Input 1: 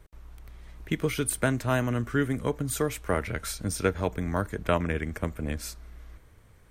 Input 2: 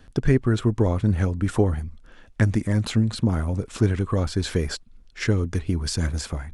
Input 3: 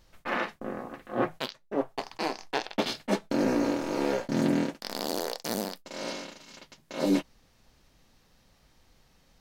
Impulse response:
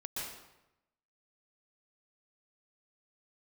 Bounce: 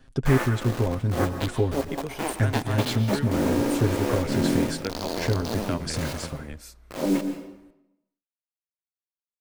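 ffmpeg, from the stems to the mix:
-filter_complex "[0:a]adelay=1000,volume=-7.5dB[a];[1:a]aecho=1:1:7.5:0.71,volume=-5.5dB[b];[2:a]afwtdn=0.01,lowshelf=f=200:g=4,acrusher=bits=5:mix=0:aa=0.000001,volume=-1.5dB,asplit=2[c][d];[d]volume=-7dB[e];[3:a]atrim=start_sample=2205[f];[e][f]afir=irnorm=-1:irlink=0[g];[a][b][c][g]amix=inputs=4:normalize=0"

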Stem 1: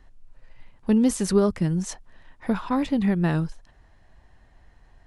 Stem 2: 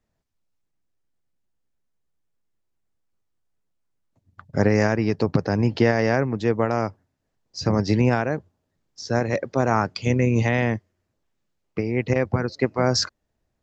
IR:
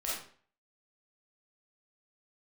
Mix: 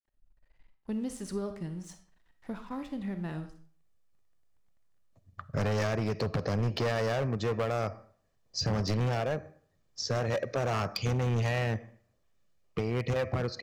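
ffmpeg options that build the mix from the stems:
-filter_complex "[0:a]aeval=exprs='sgn(val(0))*max(abs(val(0))-0.00531,0)':c=same,volume=-15.5dB,asplit=2[a][b];[b]volume=-9.5dB[c];[1:a]aecho=1:1:1.7:0.38,adelay=1000,volume=0dB,asplit=2[d][e];[e]volume=-21.5dB[f];[2:a]atrim=start_sample=2205[g];[c][f]amix=inputs=2:normalize=0[h];[h][g]afir=irnorm=-1:irlink=0[i];[a][d][i]amix=inputs=3:normalize=0,asoftclip=type=hard:threshold=-20.5dB,acompressor=threshold=-29dB:ratio=3"

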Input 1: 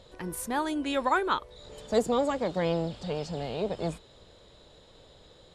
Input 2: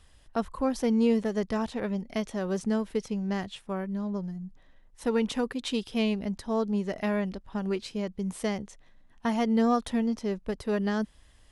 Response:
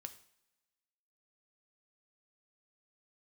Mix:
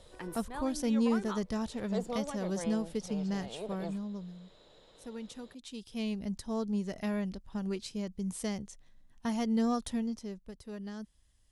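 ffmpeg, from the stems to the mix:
-filter_complex "[0:a]highpass=f=220:p=1,volume=-3dB[a];[1:a]bass=f=250:g=7,treble=f=4k:g=14,volume=2.5dB,afade=t=out:st=3.77:d=0.68:silence=0.281838,afade=t=in:st=5.71:d=0.61:silence=0.298538,afade=t=out:st=9.85:d=0.62:silence=0.354813,asplit=2[b][c];[c]apad=whole_len=244571[d];[a][d]sidechaincompress=threshold=-36dB:ratio=8:attack=5.8:release=1490[e];[e][b]amix=inputs=2:normalize=0,highshelf=f=5.8k:g=-5"

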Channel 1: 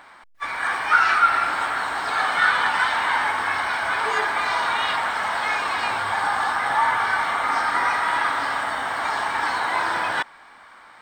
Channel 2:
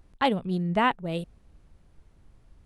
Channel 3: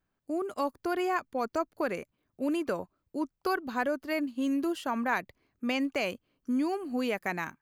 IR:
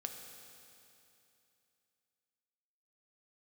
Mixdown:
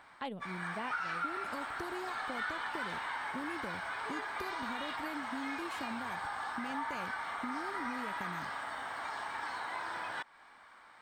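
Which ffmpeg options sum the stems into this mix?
-filter_complex "[0:a]volume=-10.5dB[a];[1:a]highpass=120,volume=-11dB[b];[2:a]bass=f=250:g=14,treble=f=4k:g=5,acompressor=threshold=-33dB:ratio=6,adelay=950,volume=-1dB[c];[a][b][c]amix=inputs=3:normalize=0,acompressor=threshold=-41dB:ratio=2"

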